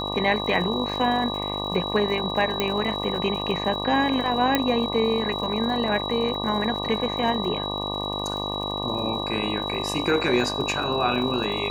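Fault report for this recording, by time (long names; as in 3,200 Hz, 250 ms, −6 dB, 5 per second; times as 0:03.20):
mains buzz 50 Hz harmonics 24 −31 dBFS
surface crackle 100 per second −34 dBFS
whistle 3,900 Hz −30 dBFS
0:02.60: click −8 dBFS
0:04.55: click −6 dBFS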